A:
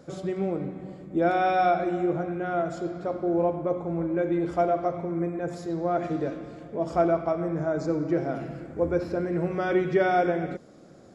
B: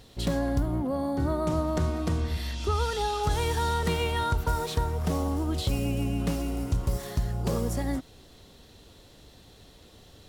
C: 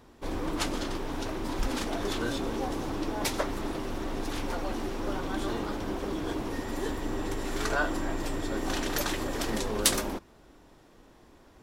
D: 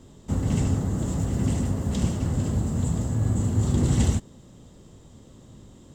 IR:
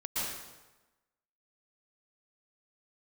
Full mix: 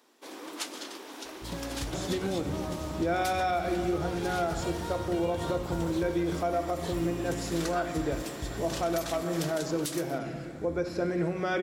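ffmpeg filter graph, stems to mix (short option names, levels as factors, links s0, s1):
-filter_complex "[0:a]highshelf=f=2500:g=11.5,adelay=1850,volume=0.841[s0];[1:a]adelay=1250,volume=0.299[s1];[2:a]highpass=f=260:w=0.5412,highpass=f=260:w=1.3066,highshelf=f=2100:g=10,volume=0.355[s2];[3:a]adelay=1800,volume=0.141[s3];[s0][s1][s2][s3]amix=inputs=4:normalize=0,alimiter=limit=0.1:level=0:latency=1:release=186"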